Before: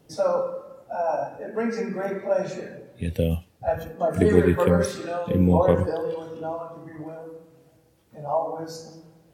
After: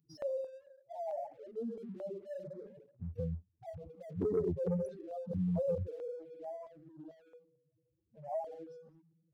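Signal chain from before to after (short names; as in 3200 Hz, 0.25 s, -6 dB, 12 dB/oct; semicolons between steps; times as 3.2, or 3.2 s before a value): spectral contrast raised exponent 3.6; pre-emphasis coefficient 0.8; sample leveller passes 1; stepped notch 4.5 Hz 550–3700 Hz; gain -2.5 dB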